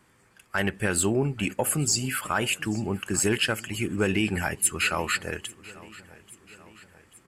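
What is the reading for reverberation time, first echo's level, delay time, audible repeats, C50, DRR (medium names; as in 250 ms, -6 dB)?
no reverb, -20.5 dB, 836 ms, 3, no reverb, no reverb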